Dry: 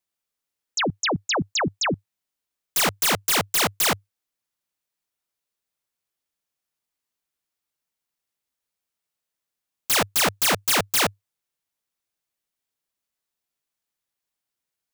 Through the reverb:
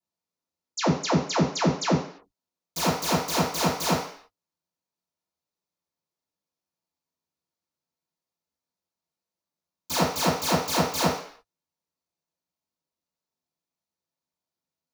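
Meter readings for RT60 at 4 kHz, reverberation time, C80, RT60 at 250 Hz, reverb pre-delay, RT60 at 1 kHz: 0.60 s, 0.55 s, 9.0 dB, 0.50 s, 3 ms, 0.55 s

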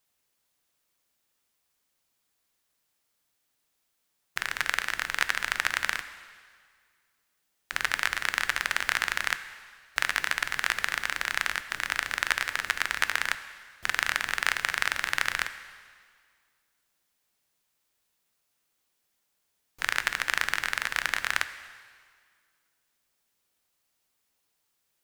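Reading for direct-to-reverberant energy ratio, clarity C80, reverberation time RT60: 11.0 dB, 13.5 dB, 1.9 s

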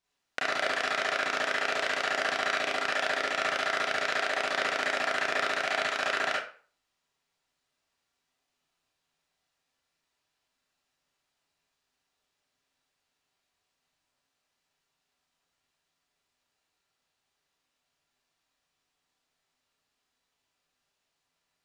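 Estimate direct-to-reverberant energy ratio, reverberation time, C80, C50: -6.0 dB, 0.45 s, 9.0 dB, 2.0 dB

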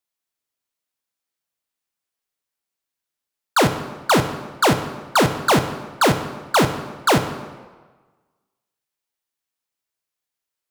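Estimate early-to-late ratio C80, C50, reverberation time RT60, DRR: 11.5 dB, 10.0 dB, 1.4 s, 7.5 dB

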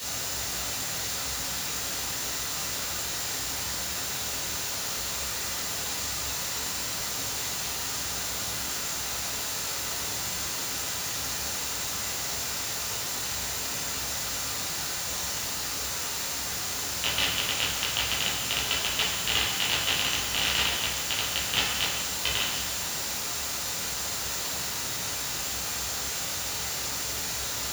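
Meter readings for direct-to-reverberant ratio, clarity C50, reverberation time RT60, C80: -8.5 dB, 1.5 dB, 1.1 s, 4.0 dB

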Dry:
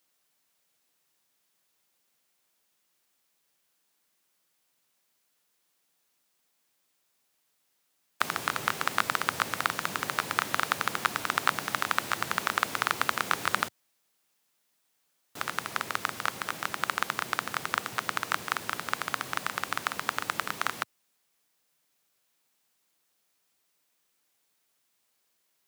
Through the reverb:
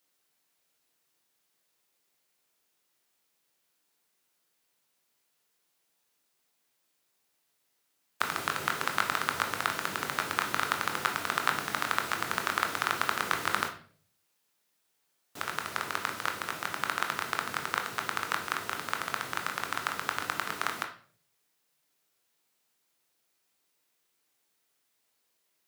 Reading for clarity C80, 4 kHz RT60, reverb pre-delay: 14.0 dB, 0.40 s, 18 ms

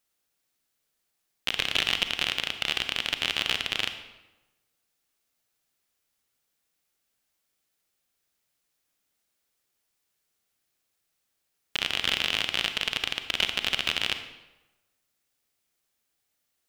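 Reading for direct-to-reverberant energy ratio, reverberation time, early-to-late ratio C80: 8.0 dB, 1.1 s, 11.0 dB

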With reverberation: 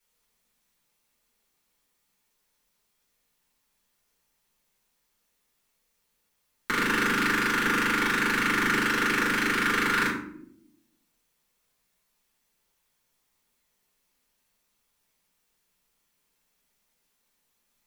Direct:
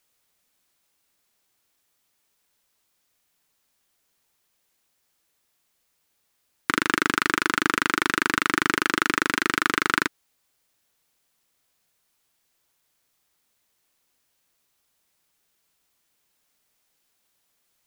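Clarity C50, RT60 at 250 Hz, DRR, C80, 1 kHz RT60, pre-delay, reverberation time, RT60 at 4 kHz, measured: 4.5 dB, 1.2 s, -8.0 dB, 8.5 dB, 0.60 s, 4 ms, 0.70 s, 0.40 s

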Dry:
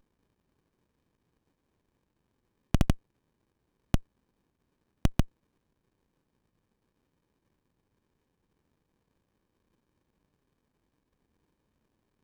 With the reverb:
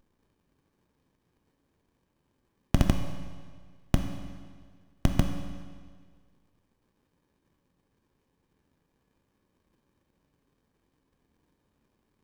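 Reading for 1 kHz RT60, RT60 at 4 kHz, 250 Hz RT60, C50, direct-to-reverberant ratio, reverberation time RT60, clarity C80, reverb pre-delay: 1.7 s, 1.6 s, 1.7 s, 6.0 dB, 4.0 dB, 1.7 s, 7.5 dB, 7 ms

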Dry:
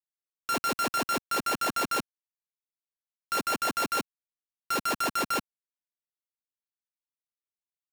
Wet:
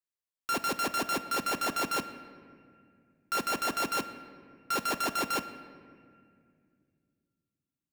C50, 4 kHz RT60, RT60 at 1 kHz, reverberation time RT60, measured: 11.5 dB, 1.4 s, 2.0 s, 2.2 s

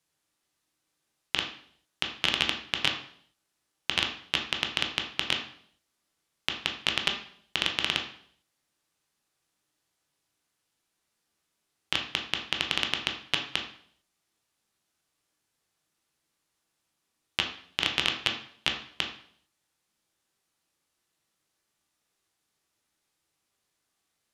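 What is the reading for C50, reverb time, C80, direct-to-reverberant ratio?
7.5 dB, 0.60 s, 11.5 dB, 2.0 dB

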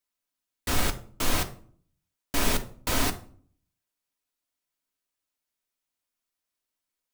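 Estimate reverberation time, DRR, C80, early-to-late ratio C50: 0.50 s, 5.0 dB, 19.5 dB, 14.0 dB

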